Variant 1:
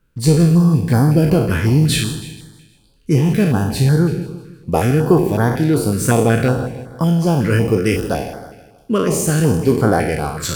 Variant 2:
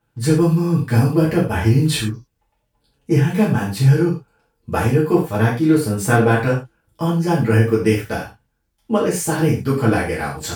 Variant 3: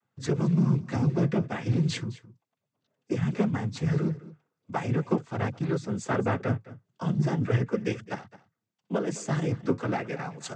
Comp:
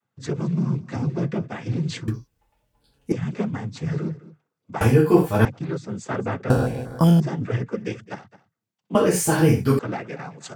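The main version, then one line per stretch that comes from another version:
3
0:02.08–0:03.12: punch in from 2
0:04.81–0:05.45: punch in from 2
0:06.50–0:07.20: punch in from 1
0:08.95–0:09.79: punch in from 2

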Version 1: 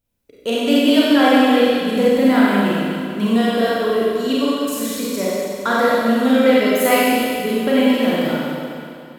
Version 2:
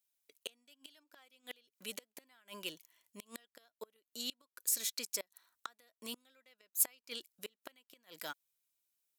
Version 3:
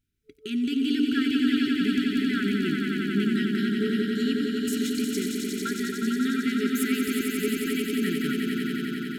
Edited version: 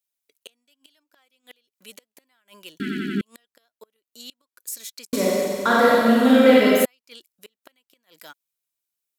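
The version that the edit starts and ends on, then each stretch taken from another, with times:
2
0:02.80–0:03.21: punch in from 3
0:05.13–0:06.85: punch in from 1

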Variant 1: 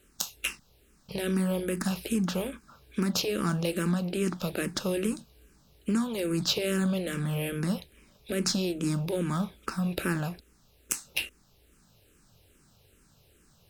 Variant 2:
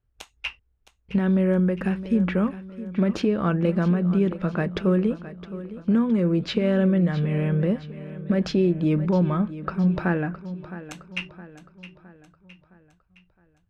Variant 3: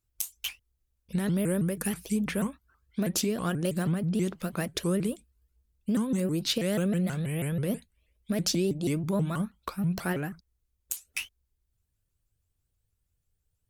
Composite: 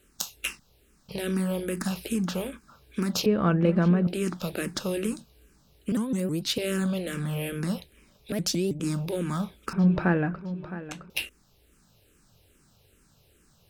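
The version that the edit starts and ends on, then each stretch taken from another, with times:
1
0:03.26–0:04.07: punch in from 2
0:05.92–0:06.58: punch in from 3
0:08.32–0:08.80: punch in from 3
0:09.73–0:11.10: punch in from 2

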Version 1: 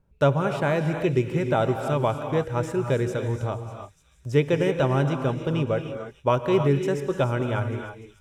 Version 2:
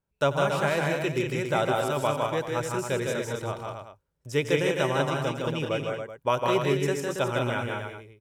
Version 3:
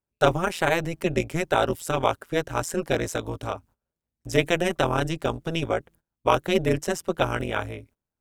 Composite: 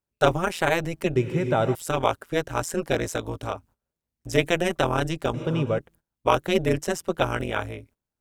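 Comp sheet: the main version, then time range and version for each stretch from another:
3
0:01.16–0:01.75: punch in from 1
0:05.34–0:05.78: punch in from 1
not used: 2

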